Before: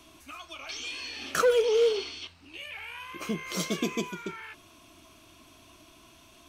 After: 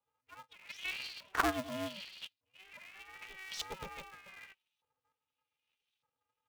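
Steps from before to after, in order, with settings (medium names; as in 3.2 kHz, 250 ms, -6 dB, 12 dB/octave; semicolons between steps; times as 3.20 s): expander on every frequency bin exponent 2; LFO band-pass saw up 0.83 Hz 800–3700 Hz; polarity switched at an audio rate 190 Hz; trim +3.5 dB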